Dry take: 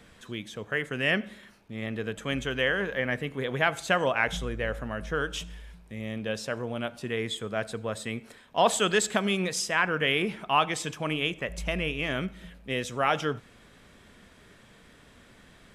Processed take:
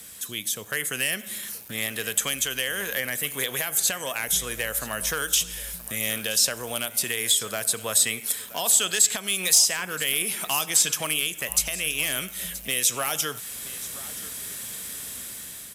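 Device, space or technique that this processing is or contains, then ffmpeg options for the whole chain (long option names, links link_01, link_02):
FM broadcast chain: -filter_complex "[0:a]highpass=48,dynaudnorm=framelen=520:gausssize=5:maxgain=10dB,acrossover=split=530|6400[link_01][link_02][link_03];[link_01]acompressor=threshold=-36dB:ratio=4[link_04];[link_02]acompressor=threshold=-28dB:ratio=4[link_05];[link_03]acompressor=threshold=-47dB:ratio=4[link_06];[link_04][link_05][link_06]amix=inputs=3:normalize=0,aemphasis=mode=production:type=75fm,alimiter=limit=-16dB:level=0:latency=1:release=431,asoftclip=type=hard:threshold=-19.5dB,lowpass=frequency=15000:width=0.5412,lowpass=frequency=15000:width=1.3066,aemphasis=mode=production:type=75fm,aecho=1:1:976:0.133"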